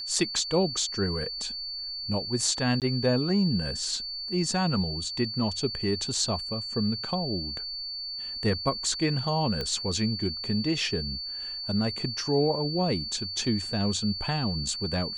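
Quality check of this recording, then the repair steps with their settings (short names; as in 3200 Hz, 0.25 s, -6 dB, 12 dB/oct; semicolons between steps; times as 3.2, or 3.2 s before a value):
tone 4500 Hz -33 dBFS
2.8–2.82 gap 18 ms
9.61 pop -18 dBFS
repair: de-click; notch 4500 Hz, Q 30; interpolate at 2.8, 18 ms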